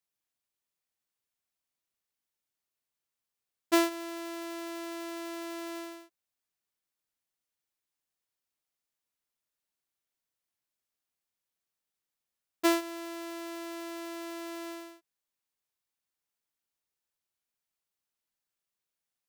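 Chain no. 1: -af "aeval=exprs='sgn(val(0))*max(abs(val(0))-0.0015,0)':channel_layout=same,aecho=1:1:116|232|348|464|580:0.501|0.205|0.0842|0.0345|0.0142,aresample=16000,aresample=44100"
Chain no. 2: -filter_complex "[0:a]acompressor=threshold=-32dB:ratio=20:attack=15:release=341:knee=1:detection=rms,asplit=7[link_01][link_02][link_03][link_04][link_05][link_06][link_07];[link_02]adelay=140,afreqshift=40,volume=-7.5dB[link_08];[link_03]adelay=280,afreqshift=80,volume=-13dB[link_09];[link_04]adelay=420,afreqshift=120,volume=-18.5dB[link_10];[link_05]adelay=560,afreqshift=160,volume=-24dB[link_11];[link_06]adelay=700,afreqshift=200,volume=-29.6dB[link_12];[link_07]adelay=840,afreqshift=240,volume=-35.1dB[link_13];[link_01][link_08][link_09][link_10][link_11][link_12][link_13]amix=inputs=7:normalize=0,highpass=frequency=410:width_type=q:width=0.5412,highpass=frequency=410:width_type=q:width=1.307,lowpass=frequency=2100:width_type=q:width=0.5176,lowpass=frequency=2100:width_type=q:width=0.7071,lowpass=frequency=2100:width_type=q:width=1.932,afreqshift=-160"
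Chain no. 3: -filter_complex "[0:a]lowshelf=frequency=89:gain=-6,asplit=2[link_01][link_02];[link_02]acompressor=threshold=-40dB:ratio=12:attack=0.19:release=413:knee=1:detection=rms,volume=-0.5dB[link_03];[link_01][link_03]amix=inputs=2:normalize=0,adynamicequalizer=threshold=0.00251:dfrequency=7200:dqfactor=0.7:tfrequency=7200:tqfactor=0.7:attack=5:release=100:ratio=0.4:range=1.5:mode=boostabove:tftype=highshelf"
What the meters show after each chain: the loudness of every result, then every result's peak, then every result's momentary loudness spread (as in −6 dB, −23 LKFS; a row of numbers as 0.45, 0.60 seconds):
−33.0, −43.5, −33.5 LKFS; −14.5, −28.0, −12.0 dBFS; 14, 9, 11 LU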